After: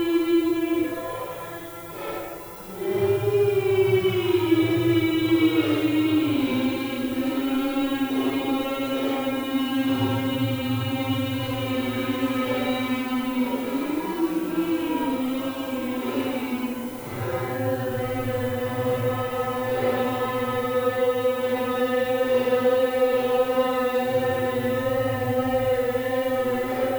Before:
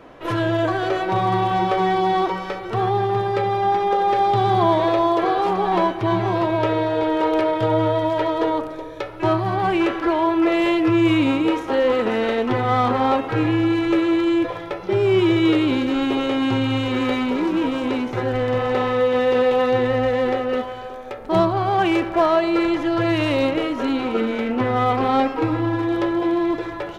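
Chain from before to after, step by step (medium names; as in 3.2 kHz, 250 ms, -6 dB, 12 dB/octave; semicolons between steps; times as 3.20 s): added noise violet -40 dBFS; Paulstretch 4.4×, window 0.10 s, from 14.24 s; trim -4.5 dB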